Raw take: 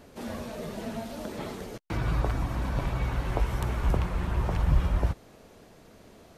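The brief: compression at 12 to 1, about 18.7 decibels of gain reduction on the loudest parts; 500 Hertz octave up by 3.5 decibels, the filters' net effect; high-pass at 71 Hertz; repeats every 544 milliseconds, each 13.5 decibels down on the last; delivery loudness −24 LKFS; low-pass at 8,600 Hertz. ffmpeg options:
ffmpeg -i in.wav -af "highpass=71,lowpass=8600,equalizer=frequency=500:width_type=o:gain=4.5,acompressor=threshold=-41dB:ratio=12,aecho=1:1:544|1088:0.211|0.0444,volume=22dB" out.wav

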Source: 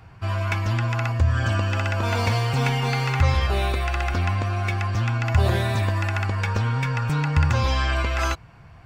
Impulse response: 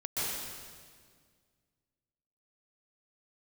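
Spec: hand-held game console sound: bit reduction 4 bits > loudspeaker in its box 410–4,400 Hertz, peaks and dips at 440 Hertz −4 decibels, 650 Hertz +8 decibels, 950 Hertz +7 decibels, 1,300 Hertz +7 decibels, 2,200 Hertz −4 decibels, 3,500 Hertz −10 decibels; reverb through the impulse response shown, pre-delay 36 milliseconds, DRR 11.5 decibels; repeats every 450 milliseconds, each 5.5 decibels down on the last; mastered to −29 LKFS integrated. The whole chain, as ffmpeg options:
-filter_complex "[0:a]aecho=1:1:450|900|1350|1800|2250|2700|3150:0.531|0.281|0.149|0.079|0.0419|0.0222|0.0118,asplit=2[link_01][link_02];[1:a]atrim=start_sample=2205,adelay=36[link_03];[link_02][link_03]afir=irnorm=-1:irlink=0,volume=-18dB[link_04];[link_01][link_04]amix=inputs=2:normalize=0,acrusher=bits=3:mix=0:aa=0.000001,highpass=410,equalizer=frequency=440:width_type=q:width=4:gain=-4,equalizer=frequency=650:width_type=q:width=4:gain=8,equalizer=frequency=950:width_type=q:width=4:gain=7,equalizer=frequency=1300:width_type=q:width=4:gain=7,equalizer=frequency=2200:width_type=q:width=4:gain=-4,equalizer=frequency=3500:width_type=q:width=4:gain=-10,lowpass=frequency=4400:width=0.5412,lowpass=frequency=4400:width=1.3066,volume=-7.5dB"

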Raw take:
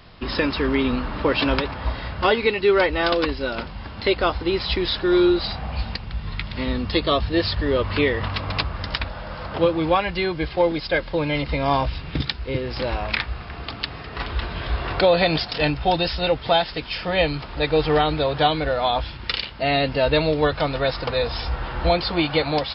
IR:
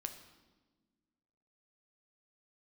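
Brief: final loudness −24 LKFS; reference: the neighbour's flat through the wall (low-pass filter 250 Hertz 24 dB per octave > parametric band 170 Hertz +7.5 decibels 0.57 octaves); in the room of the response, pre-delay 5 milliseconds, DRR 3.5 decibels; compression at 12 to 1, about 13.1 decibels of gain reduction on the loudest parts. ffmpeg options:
-filter_complex "[0:a]acompressor=threshold=-27dB:ratio=12,asplit=2[link_01][link_02];[1:a]atrim=start_sample=2205,adelay=5[link_03];[link_02][link_03]afir=irnorm=-1:irlink=0,volume=-1.5dB[link_04];[link_01][link_04]amix=inputs=2:normalize=0,lowpass=frequency=250:width=0.5412,lowpass=frequency=250:width=1.3066,equalizer=frequency=170:width_type=o:width=0.57:gain=7.5,volume=10.5dB"

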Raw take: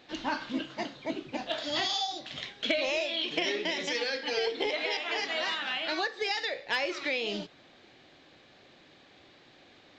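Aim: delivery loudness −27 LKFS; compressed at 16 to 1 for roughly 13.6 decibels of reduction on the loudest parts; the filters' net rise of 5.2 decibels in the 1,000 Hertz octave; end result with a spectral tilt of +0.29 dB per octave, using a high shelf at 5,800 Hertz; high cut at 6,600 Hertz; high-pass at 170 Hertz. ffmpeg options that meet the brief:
ffmpeg -i in.wav -af "highpass=170,lowpass=6600,equalizer=frequency=1000:width_type=o:gain=7,highshelf=frequency=5800:gain=-5.5,acompressor=threshold=-36dB:ratio=16,volume=13dB" out.wav

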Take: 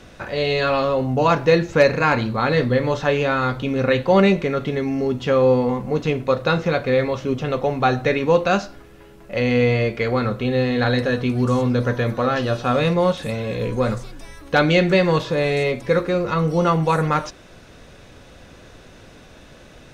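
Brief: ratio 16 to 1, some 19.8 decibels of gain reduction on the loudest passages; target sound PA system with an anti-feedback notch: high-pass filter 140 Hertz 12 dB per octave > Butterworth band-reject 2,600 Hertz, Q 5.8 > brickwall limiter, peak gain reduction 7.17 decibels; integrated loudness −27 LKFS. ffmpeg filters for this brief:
ffmpeg -i in.wav -af "acompressor=threshold=-30dB:ratio=16,highpass=140,asuperstop=centerf=2600:order=8:qfactor=5.8,volume=10dB,alimiter=limit=-16.5dB:level=0:latency=1" out.wav

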